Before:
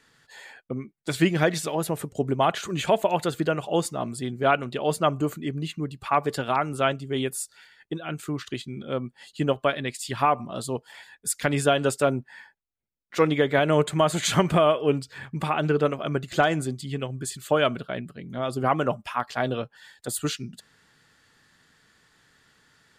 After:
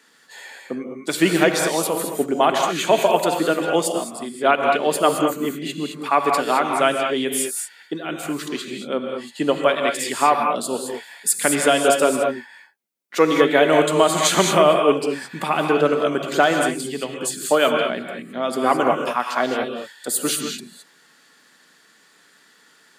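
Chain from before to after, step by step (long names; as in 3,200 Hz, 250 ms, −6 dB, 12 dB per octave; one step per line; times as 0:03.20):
high-pass filter 210 Hz 24 dB per octave
high-shelf EQ 7,600 Hz +6 dB
reverb whose tail is shaped and stops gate 240 ms rising, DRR 2.5 dB
0:03.92–0:04.63: expander for the loud parts 1.5 to 1, over −31 dBFS
level +4.5 dB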